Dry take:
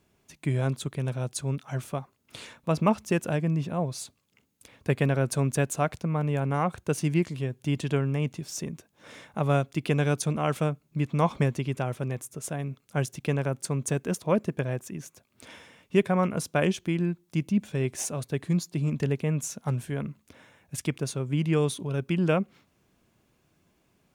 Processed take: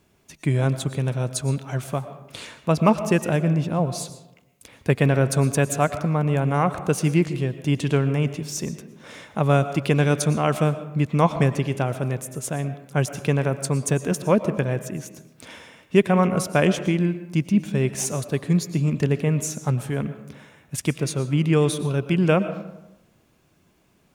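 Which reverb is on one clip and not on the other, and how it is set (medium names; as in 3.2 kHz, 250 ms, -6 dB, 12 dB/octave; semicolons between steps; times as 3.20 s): algorithmic reverb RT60 0.93 s, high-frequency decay 0.5×, pre-delay 75 ms, DRR 11.5 dB; trim +5.5 dB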